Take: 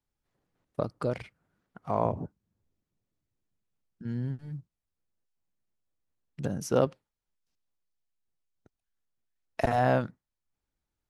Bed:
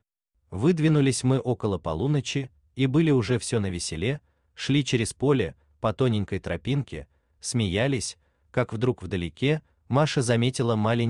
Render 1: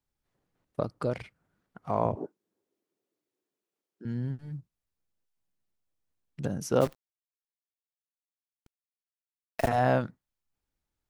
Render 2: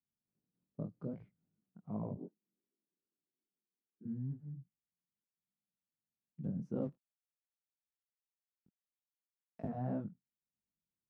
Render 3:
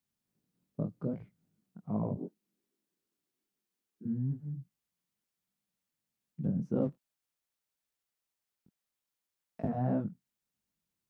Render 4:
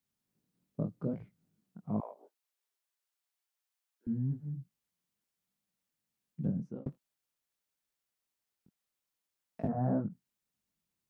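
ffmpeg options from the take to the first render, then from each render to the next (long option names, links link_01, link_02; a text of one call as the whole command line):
ffmpeg -i in.wav -filter_complex "[0:a]asettb=1/sr,asplit=3[link_01][link_02][link_03];[link_01]atrim=end=2.154[link_04];[link_02]atrim=start=2.15:end=4.05,asetpts=PTS-STARTPTS,afade=type=in:duration=0.004:curve=qsin,afade=type=out:start_time=1.896:duration=0.004:curve=qsin,highpass=frequency=370:width_type=q:width=3[link_05];[link_03]atrim=start=4.046[link_06];[link_04][link_05]acrossfade=duration=0.004:curve1=hsin:curve2=qsin[link_07];[link_07][link_06]acrossfade=duration=0.004:curve1=qsin:curve2=hsin,asplit=3[link_08][link_09][link_10];[link_08]afade=type=out:start_time=6.8:duration=0.02[link_11];[link_09]acrusher=bits=7:dc=4:mix=0:aa=0.000001,afade=type=in:start_time=6.8:duration=0.02,afade=type=out:start_time=9.67:duration=0.02[link_12];[link_10]afade=type=in:start_time=9.67:duration=0.02[link_13];[link_11][link_12][link_13]amix=inputs=3:normalize=0" out.wav
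ffmpeg -i in.wav -af "bandpass=frequency=190:width_type=q:width=2.2:csg=0,flanger=delay=18.5:depth=4.8:speed=2.5" out.wav
ffmpeg -i in.wav -af "volume=7dB" out.wav
ffmpeg -i in.wav -filter_complex "[0:a]asettb=1/sr,asplit=3[link_01][link_02][link_03];[link_01]atrim=end=2.004[link_04];[link_02]atrim=start=2:end=4.07,asetpts=PTS-STARTPTS,afade=type=in:duration=0.004:curve=qsin,afade=type=out:start_time=2.066:duration=0.004:curve=qsin,highpass=frequency=660:width=0.5412,highpass=frequency=660:width=1.3066[link_05];[link_03]atrim=start=4.066[link_06];[link_04][link_05]acrossfade=duration=0.004:curve1=hsin:curve2=qsin[link_07];[link_07][link_06]acrossfade=duration=0.004:curve1=qsin:curve2=hsin,asplit=3[link_08][link_09][link_10];[link_08]afade=type=out:start_time=9.67:duration=0.02[link_11];[link_09]lowpass=frequency=1700:width=0.5412,lowpass=frequency=1700:width=1.3066,afade=type=in:start_time=9.67:duration=0.02,afade=type=out:start_time=10.09:duration=0.02[link_12];[link_10]afade=type=in:start_time=10.09:duration=0.02[link_13];[link_11][link_12][link_13]amix=inputs=3:normalize=0,asplit=2[link_14][link_15];[link_14]atrim=end=6.86,asetpts=PTS-STARTPTS,afade=type=out:start_time=6.46:duration=0.4[link_16];[link_15]atrim=start=6.86,asetpts=PTS-STARTPTS,afade=type=in:duration=0.004:curve=hsin[link_17];[link_16][link_17]concat=n=2:v=0:a=1" out.wav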